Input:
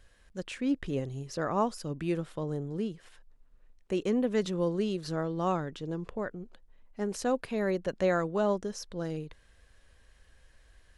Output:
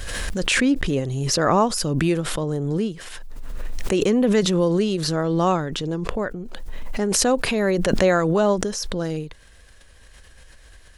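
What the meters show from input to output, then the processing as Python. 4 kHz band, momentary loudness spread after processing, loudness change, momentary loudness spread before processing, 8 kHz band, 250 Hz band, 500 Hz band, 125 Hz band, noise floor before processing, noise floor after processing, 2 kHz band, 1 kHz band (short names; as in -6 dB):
+18.0 dB, 18 LU, +10.5 dB, 11 LU, +20.0 dB, +10.0 dB, +9.5 dB, +11.5 dB, -62 dBFS, -48 dBFS, +14.0 dB, +10.0 dB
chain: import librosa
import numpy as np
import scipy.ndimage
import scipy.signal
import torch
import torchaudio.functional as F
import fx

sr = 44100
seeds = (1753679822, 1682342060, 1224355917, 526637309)

y = fx.high_shelf(x, sr, hz=3600.0, db=5.5)
y = fx.pre_swell(y, sr, db_per_s=21.0)
y = y * 10.0 ** (8.5 / 20.0)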